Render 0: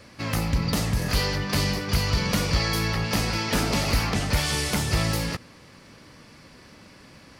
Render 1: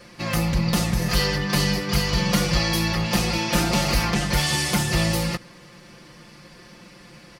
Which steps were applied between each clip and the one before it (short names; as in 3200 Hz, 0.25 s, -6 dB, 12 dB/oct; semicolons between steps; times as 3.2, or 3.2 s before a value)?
comb 5.7 ms, depth 99%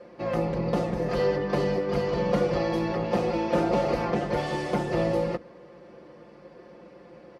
octaver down 2 oct, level -3 dB; band-pass 490 Hz, Q 1.8; gain +6 dB